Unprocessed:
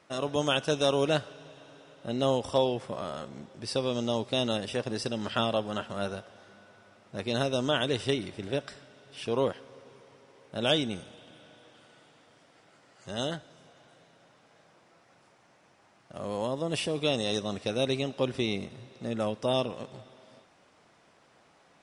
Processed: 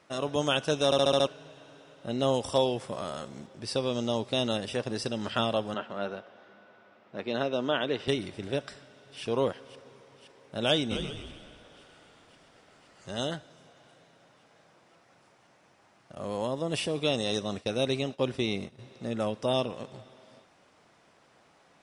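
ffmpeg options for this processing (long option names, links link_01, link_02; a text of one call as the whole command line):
ffmpeg -i in.wav -filter_complex "[0:a]asettb=1/sr,asplit=3[link_01][link_02][link_03];[link_01]atrim=end=2.344[link_04];[link_02]atrim=start=2.34:end=3.47,asetpts=PTS-STARTPTS,afade=type=in:duration=0.004:curve=qsin,afade=type=out:start_time=1.126:duration=0.004:curve=qsin,highshelf=frequency=6000:gain=9[link_05];[link_03]atrim=start=3.466[link_06];[link_04][link_05]acrossfade=duration=0.004:curve1=hsin:curve2=qsin[link_07];[link_07][link_06]acrossfade=duration=0.004:curve1=qsin:curve2=hsin,asettb=1/sr,asplit=3[link_08][link_09][link_10];[link_08]atrim=end=5.744[link_11];[link_09]atrim=start=5.74:end=8.08,asetpts=PTS-STARTPTS,afade=type=in:duration=0.004:curve=qsin,afade=type=out:start_time=2.336:duration=0.004:curve=qsin,highpass=200,lowpass=3100[link_12];[link_10]atrim=start=8.076[link_13];[link_11][link_12]acrossfade=duration=0.004:curve1=hsin:curve2=qsin[link_14];[link_14][link_13]acrossfade=duration=0.004:curve1=qsin:curve2=hsin,asplit=2[link_15][link_16];[link_16]afade=type=in:start_time=8.73:duration=0.01,afade=type=out:start_time=9.23:duration=0.01,aecho=0:1:520|1040|1560|2080|2600|3120|3640|4160|4680|5200|5720|6240:0.223872|0.179098|0.143278|0.114623|0.091698|0.0733584|0.0586867|0.0469494|0.0375595|0.0300476|0.0240381|0.0192305[link_17];[link_15][link_17]amix=inputs=2:normalize=0,asplit=3[link_18][link_19][link_20];[link_18]afade=type=out:start_time=10.9:duration=0.02[link_21];[link_19]asplit=7[link_22][link_23][link_24][link_25][link_26][link_27][link_28];[link_23]adelay=130,afreqshift=-58,volume=-5dB[link_29];[link_24]adelay=260,afreqshift=-116,volume=-11.2dB[link_30];[link_25]adelay=390,afreqshift=-174,volume=-17.4dB[link_31];[link_26]adelay=520,afreqshift=-232,volume=-23.6dB[link_32];[link_27]adelay=650,afreqshift=-290,volume=-29.8dB[link_33];[link_28]adelay=780,afreqshift=-348,volume=-36dB[link_34];[link_22][link_29][link_30][link_31][link_32][link_33][link_34]amix=inputs=7:normalize=0,afade=type=in:start_time=10.9:duration=0.02,afade=type=out:start_time=13.19:duration=0.02[link_35];[link_20]afade=type=in:start_time=13.19:duration=0.02[link_36];[link_21][link_35][link_36]amix=inputs=3:normalize=0,asettb=1/sr,asplit=3[link_37][link_38][link_39];[link_37]atrim=end=16.154[link_40];[link_38]atrim=start=16.15:end=18.79,asetpts=PTS-STARTPTS,afade=type=in:duration=0.004:curve=qsin,afade=type=out:start_time=2.636:duration=0.004:curve=qsin,agate=range=-33dB:threshold=-40dB:ratio=3:release=100:detection=peak[link_41];[link_39]atrim=start=18.786[link_42];[link_40][link_41]acrossfade=duration=0.004:curve1=hsin:curve2=qsin[link_43];[link_43][link_42]acrossfade=duration=0.004:curve1=qsin:curve2=hsin,asplit=7[link_44][link_45][link_46][link_47][link_48][link_49][link_50];[link_44]atrim=end=0.922[link_51];[link_45]atrim=start=0.848:end=0.922[link_52];[link_46]atrim=start=0.848:end=0.922[link_53];[link_47]atrim=start=0.848:end=0.922[link_54];[link_48]atrim=start=0.848:end=0.922[link_55];[link_49]atrim=start=0.848:end=0.922[link_56];[link_50]atrim=start=1.268[link_57];[link_51][link_52]acrossfade=duration=0.004:curve1=hsin:curve2=hsin[link_58];[link_58][link_53]acrossfade=duration=0.004:curve1=hsin:curve2=hsin[link_59];[link_59][link_54]acrossfade=duration=0.004:curve1=hsin:curve2=hsin[link_60];[link_60][link_55]acrossfade=duration=0.004:curve1=hsin:curve2=hsin[link_61];[link_61][link_56]acrossfade=duration=0.004:curve1=hsin:curve2=hsin[link_62];[link_62][link_57]acrossfade=duration=0.004:curve1=hsin:curve2=hsin" out.wav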